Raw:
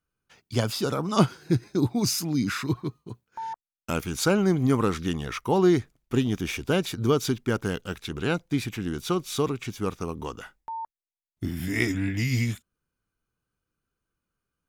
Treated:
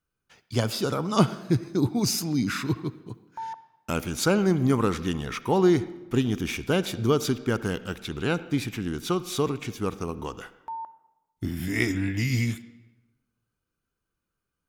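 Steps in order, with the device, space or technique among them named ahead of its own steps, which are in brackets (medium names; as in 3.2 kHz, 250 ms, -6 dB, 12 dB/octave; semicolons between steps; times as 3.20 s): filtered reverb send (on a send: high-pass 160 Hz + low-pass 4.7 kHz 12 dB/octave + reverberation RT60 1.0 s, pre-delay 56 ms, DRR 15 dB)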